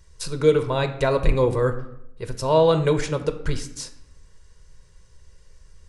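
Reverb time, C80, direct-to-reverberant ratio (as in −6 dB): 0.80 s, 14.5 dB, 8.0 dB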